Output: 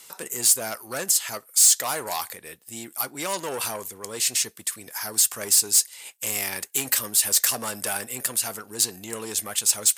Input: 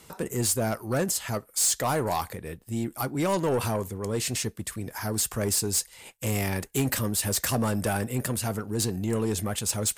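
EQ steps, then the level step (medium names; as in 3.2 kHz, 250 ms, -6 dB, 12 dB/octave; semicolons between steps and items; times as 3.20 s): high-pass 840 Hz 6 dB/octave; treble shelf 2.6 kHz +9 dB; 0.0 dB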